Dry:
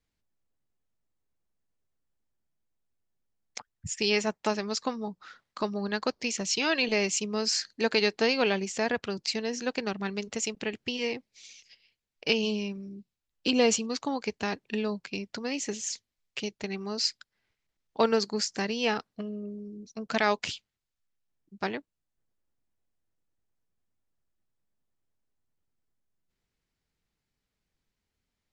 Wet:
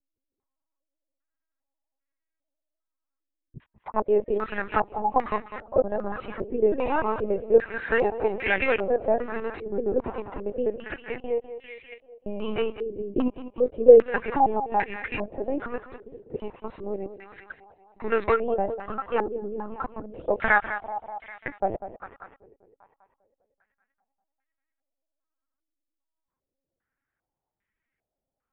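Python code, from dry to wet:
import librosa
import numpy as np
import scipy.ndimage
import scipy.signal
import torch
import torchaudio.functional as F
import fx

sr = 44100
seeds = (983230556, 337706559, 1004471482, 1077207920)

y = fx.block_reorder(x, sr, ms=146.0, group=3)
y = fx.low_shelf(y, sr, hz=180.0, db=-7.0)
y = y + 0.31 * np.pad(y, (int(3.7 * sr / 1000.0), 0))[:len(y)]
y = fx.leveller(y, sr, passes=1)
y = np.clip(y, -10.0 ** (-13.0 / 20.0), 10.0 ** (-13.0 / 20.0))
y = fx.echo_thinned(y, sr, ms=197, feedback_pct=64, hz=190.0, wet_db=-11.5)
y = fx.lpc_vocoder(y, sr, seeds[0], excitation='pitch_kept', order=16)
y = fx.filter_held_lowpass(y, sr, hz=2.5, low_hz=410.0, high_hz=2000.0)
y = y * 10.0 ** (-1.0 / 20.0)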